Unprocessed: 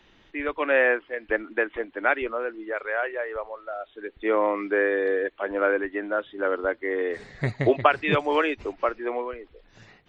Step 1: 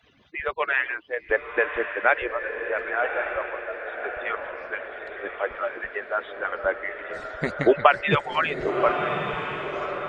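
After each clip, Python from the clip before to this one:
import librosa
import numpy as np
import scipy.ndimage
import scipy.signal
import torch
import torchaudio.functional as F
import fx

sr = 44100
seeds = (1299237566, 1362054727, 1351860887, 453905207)

y = fx.hpss_only(x, sr, part='percussive')
y = fx.echo_diffused(y, sr, ms=1129, feedback_pct=44, wet_db=-6)
y = F.gain(torch.from_numpy(y), 2.5).numpy()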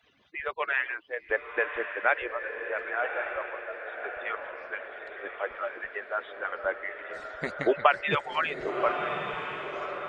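y = fx.low_shelf(x, sr, hz=280.0, db=-8.0)
y = F.gain(torch.from_numpy(y), -4.0).numpy()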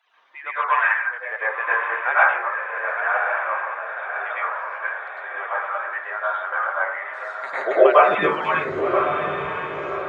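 y = fx.filter_sweep_highpass(x, sr, from_hz=930.0, to_hz=72.0, start_s=7.41, end_s=8.84, q=2.7)
y = fx.rev_plate(y, sr, seeds[0], rt60_s=0.66, hf_ratio=0.25, predelay_ms=90, drr_db=-10.0)
y = F.gain(torch.from_numpy(y), -4.0).numpy()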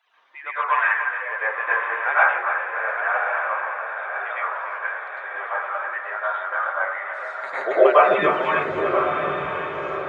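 y = fx.echo_feedback(x, sr, ms=294, feedback_pct=52, wet_db=-10.0)
y = F.gain(torch.from_numpy(y), -1.0).numpy()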